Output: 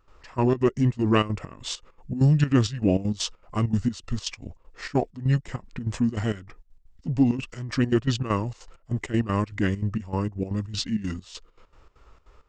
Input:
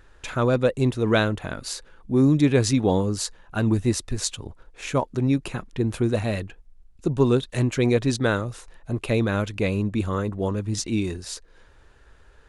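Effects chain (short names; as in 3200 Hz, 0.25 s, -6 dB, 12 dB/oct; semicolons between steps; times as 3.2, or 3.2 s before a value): formant shift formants -5 st; step gate ".xx..xx.x.xx.xxx" 197 bpm -12 dB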